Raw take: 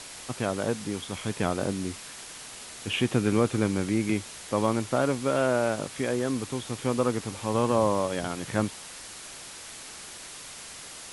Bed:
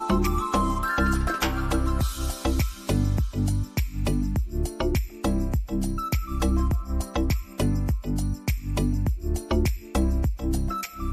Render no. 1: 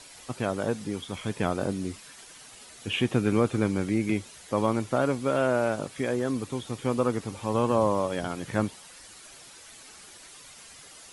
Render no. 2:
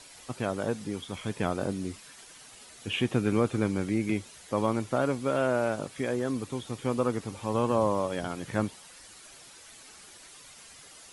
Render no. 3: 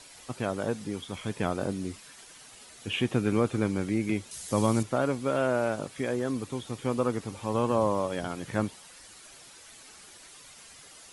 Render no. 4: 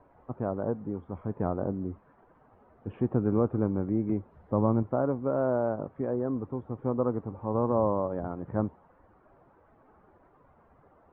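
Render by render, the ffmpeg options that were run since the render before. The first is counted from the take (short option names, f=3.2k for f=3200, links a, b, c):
-af "afftdn=nr=9:nf=-43"
-af "volume=-2dB"
-filter_complex "[0:a]asettb=1/sr,asplit=3[a][b][c];[a]atrim=end=4.314[d];[b]atrim=start=4.31:end=4.83,asetpts=PTS-STARTPTS,afade=t=in:d=0.004:c=qsin,afade=t=out:st=0.516:d=0.004:c=qsin,bass=f=250:g=7,treble=f=4k:g=12[e];[c]atrim=start=4.826[f];[d][e]acrossfade=d=0.004:c1=hsin:c2=qsin[g];[g][f]acrossfade=d=0.004:c1=qsin:c2=hsin"
-af "lowpass=f=1.1k:w=0.5412,lowpass=f=1.1k:w=1.3066,equalizer=f=80:t=o:w=0.34:g=6"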